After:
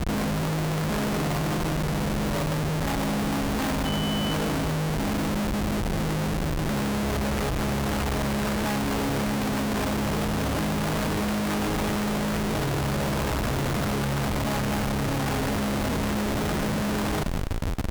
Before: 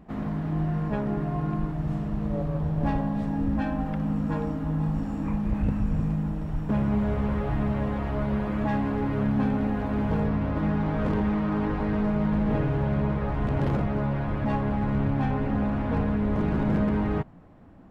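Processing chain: Schmitt trigger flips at -46 dBFS; Chebyshev shaper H 3 -20 dB, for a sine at -20 dBFS; 3.84–4.33 s: whistle 3 kHz -36 dBFS; on a send: thinning echo 190 ms, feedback 55%, level -16 dB; on the sum: trim +2 dB

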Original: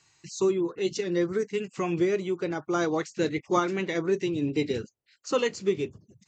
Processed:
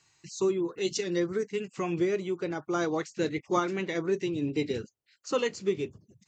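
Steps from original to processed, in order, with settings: 0.72–1.20 s: treble shelf 3.5 kHz +8.5 dB; trim -2.5 dB

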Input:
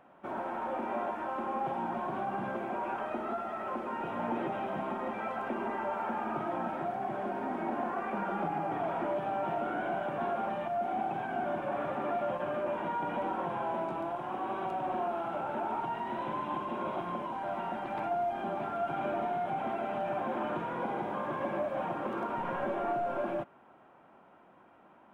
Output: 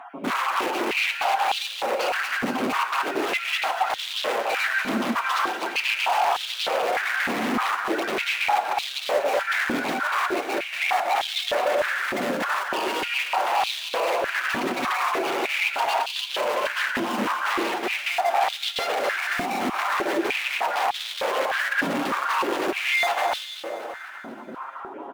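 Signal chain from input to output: random holes in the spectrogram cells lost 37%; treble shelf 3.3 kHz -9.5 dB; compression 6:1, threshold -41 dBFS, peak gain reduction 11 dB; in parallel at -8 dB: bit crusher 7-bit; on the sum: flange 0.32 Hz, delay 7.1 ms, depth 2 ms, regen +25%; sine folder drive 15 dB, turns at -30.5 dBFS; on a send: feedback delay 240 ms, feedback 60%, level -9.5 dB; on the sum: gated-style reverb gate 370 ms flat, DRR 10 dB; step-sequenced high-pass 3.3 Hz 240–3500 Hz; trim +5 dB

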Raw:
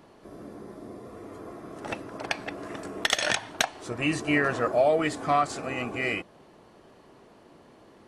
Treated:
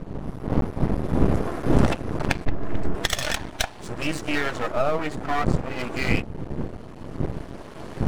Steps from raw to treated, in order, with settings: coarse spectral quantiser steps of 15 dB; recorder AGC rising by 7.9 dB/s; wind noise 220 Hz -27 dBFS; 4.72–5.79 s: treble shelf 2.6 kHz -10 dB; half-wave rectifier; 2.45–2.95 s: RIAA curve playback; trim +4 dB

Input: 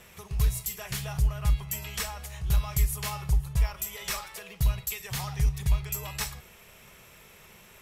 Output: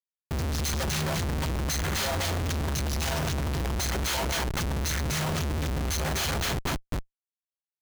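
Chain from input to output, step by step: frequency axis rescaled in octaves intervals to 82%; gate -40 dBFS, range -13 dB; peaking EQ 1.1 kHz -2.5 dB 1.3 oct; de-hum 67.08 Hz, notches 3; in parallel at +2.5 dB: peak limiter -24 dBFS, peak gain reduction 8 dB; on the sum: compression 3:1, threshold -23 dBFS, peak gain reduction 5.5 dB; two-band feedback delay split 1.1 kHz, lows 145 ms, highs 246 ms, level -6 dB; Schmitt trigger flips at -36.5 dBFS

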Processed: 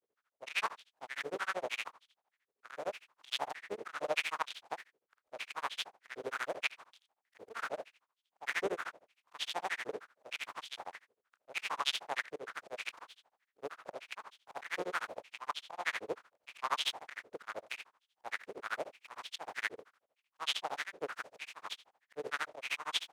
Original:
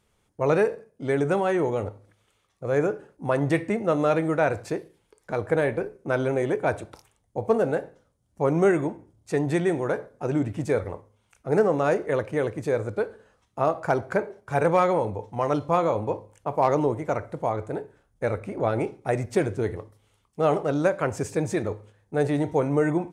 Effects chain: spectral contrast reduction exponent 0.16; slow attack 134 ms; granulator 75 ms, grains 13 per s, spray 11 ms, pitch spread up and down by 0 st; step-sequenced band-pass 6.5 Hz 450–3300 Hz; trim +3.5 dB

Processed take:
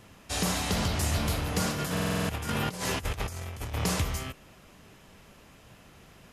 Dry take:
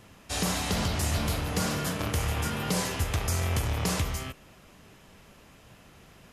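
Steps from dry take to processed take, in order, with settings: 1.71–3.74 s: compressor with a negative ratio -32 dBFS, ratio -0.5; buffer glitch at 1.92 s, samples 2048, times 7

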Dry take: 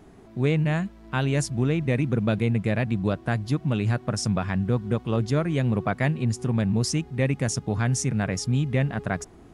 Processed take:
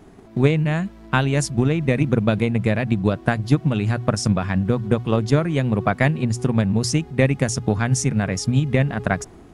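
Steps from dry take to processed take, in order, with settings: hum notches 60/120 Hz; transient shaper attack +8 dB, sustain +3 dB; trim +2.5 dB

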